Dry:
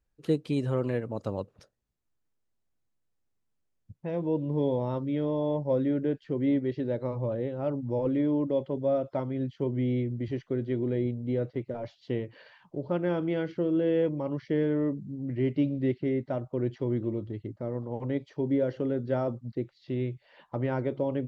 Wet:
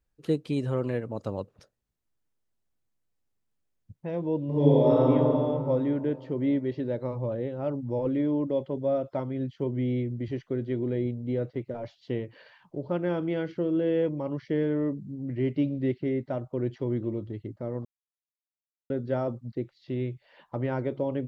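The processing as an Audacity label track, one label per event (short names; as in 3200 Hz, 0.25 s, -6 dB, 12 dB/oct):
4.450000	5.080000	reverb throw, RT60 2.8 s, DRR -8 dB
17.850000	18.900000	mute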